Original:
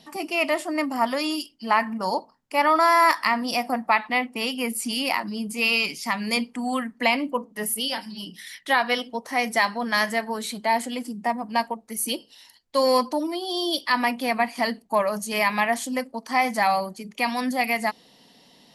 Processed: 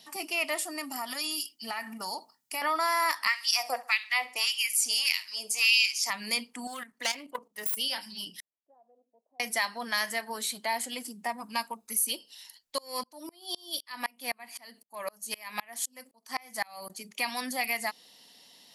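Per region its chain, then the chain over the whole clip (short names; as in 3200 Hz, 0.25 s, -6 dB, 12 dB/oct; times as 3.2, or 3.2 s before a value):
0.58–2.62 high shelf 4100 Hz +8.5 dB + compressor 3:1, threshold -26 dBFS + notch comb 530 Hz
3.27–6.1 bell 6200 Hz +11.5 dB 0.97 oct + LFO high-pass sine 1.7 Hz 490–3000 Hz + feedback echo 67 ms, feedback 32%, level -19 dB
6.67–7.77 self-modulated delay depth 0.14 ms + bell 230 Hz -4.5 dB 0.69 oct + level quantiser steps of 11 dB
8.4–9.4 elliptic low-pass 660 Hz, stop band 70 dB + differentiator + compressor 2:1, threshold -52 dBFS
11.4–11.99 high shelf 5600 Hz +4.5 dB + notch 750 Hz, Q 14 + comb 0.8 ms, depth 38%
12.78–16.9 high shelf 11000 Hz +7.5 dB + dB-ramp tremolo swelling 3.9 Hz, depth 32 dB
whole clip: tilt +3 dB/oct; compressor 1.5:1, threshold -26 dBFS; gain -5.5 dB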